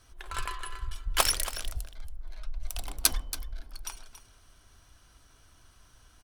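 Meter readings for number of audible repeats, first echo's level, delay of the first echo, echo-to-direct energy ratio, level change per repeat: 1, -13.0 dB, 279 ms, -13.0 dB, no regular repeats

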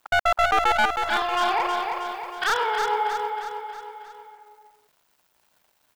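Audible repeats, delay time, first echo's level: 5, 317 ms, -5.5 dB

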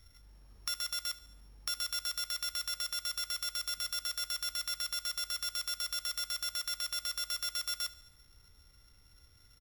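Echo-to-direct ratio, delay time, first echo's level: -17.0 dB, 73 ms, -18.5 dB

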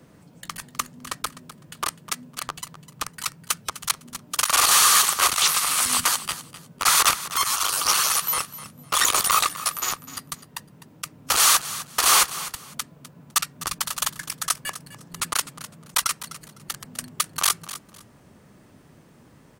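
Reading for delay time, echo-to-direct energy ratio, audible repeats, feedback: 253 ms, -15.0 dB, 2, 22%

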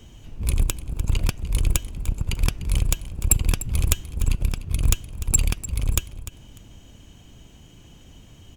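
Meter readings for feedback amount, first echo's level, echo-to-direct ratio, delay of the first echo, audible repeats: 22%, -15.0 dB, -15.0 dB, 298 ms, 2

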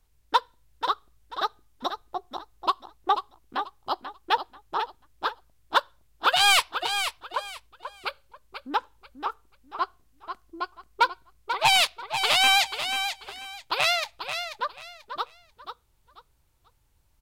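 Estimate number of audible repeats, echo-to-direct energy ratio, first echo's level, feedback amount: 3, -8.0 dB, -8.5 dB, 25%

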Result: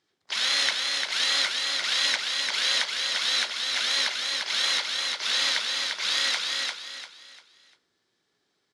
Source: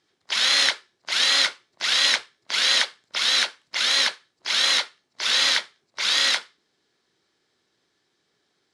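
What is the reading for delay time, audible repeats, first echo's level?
347 ms, 4, -3.5 dB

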